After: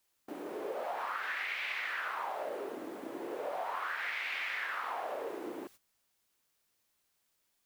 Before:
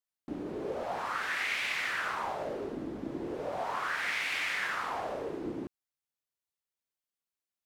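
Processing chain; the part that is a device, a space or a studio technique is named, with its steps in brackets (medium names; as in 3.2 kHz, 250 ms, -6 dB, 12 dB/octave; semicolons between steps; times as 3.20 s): baby monitor (band-pass 500–3600 Hz; compression, threshold -37 dBFS, peak gain reduction 7.5 dB; white noise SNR 23 dB; gate -57 dBFS, range -15 dB); trim +3 dB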